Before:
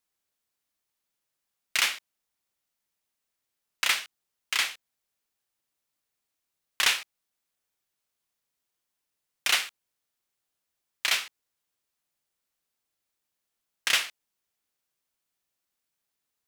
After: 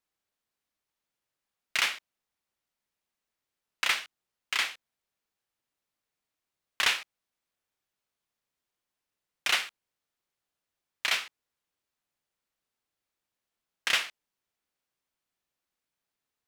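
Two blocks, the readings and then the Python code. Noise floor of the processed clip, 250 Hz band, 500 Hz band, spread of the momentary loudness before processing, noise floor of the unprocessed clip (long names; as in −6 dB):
below −85 dBFS, 0.0 dB, 0.0 dB, 14 LU, −84 dBFS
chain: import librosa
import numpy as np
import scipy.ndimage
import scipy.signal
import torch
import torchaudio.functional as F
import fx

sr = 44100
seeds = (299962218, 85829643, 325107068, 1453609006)

y = fx.high_shelf(x, sr, hz=5100.0, db=-8.5)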